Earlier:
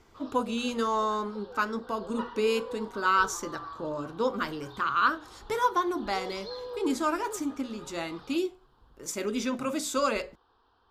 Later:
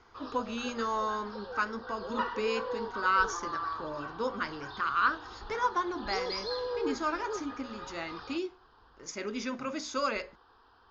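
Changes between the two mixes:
background +9.5 dB
master: add Chebyshev low-pass with heavy ripple 6,800 Hz, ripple 6 dB

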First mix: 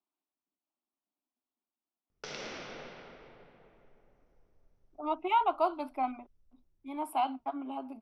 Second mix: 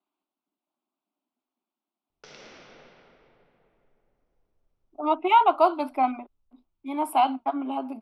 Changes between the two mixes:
speech +9.0 dB
background −6.0 dB

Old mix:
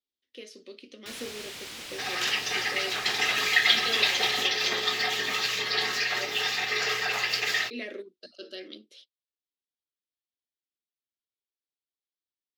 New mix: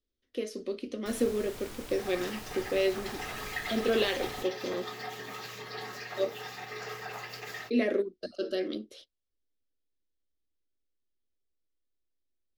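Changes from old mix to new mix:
speech +11.0 dB
second sound −7.0 dB
master: remove meter weighting curve D

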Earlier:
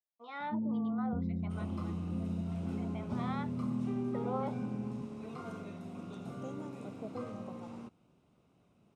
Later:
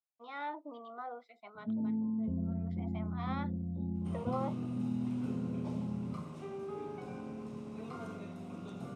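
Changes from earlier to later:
first sound: entry +1.15 s
second sound: entry +2.55 s

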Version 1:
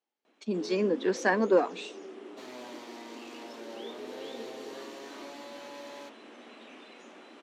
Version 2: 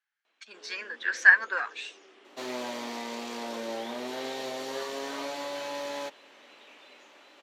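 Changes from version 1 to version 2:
speech: add high-pass with resonance 1,600 Hz, resonance Q 5.7
first sound: add resonant band-pass 3,100 Hz, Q 0.6
second sound +10.0 dB

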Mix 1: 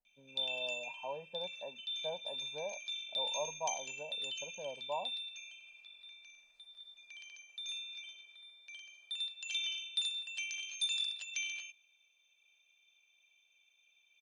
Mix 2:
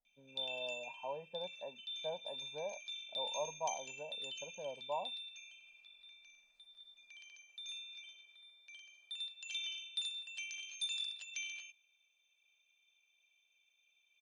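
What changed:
speech: send off
background −4.5 dB

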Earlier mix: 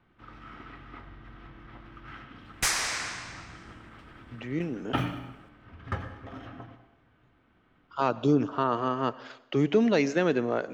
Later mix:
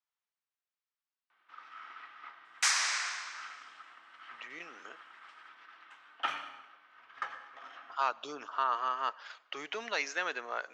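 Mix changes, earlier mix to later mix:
speech: send −6.0 dB
first sound: entry +1.30 s
master: add Chebyshev band-pass filter 1,100–6,900 Hz, order 2

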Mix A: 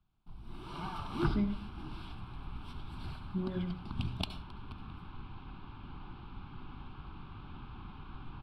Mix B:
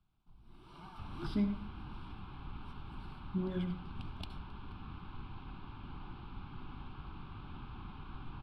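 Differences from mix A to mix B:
speech: remove low-pass filter 6,000 Hz
first sound −11.5 dB

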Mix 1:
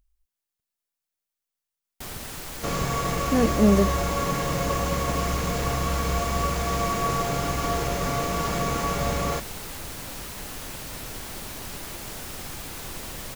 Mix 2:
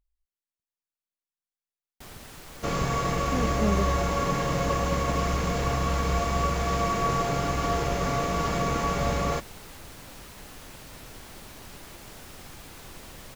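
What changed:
speech −9.0 dB
first sound −7.0 dB
master: add high-shelf EQ 6,400 Hz −5 dB

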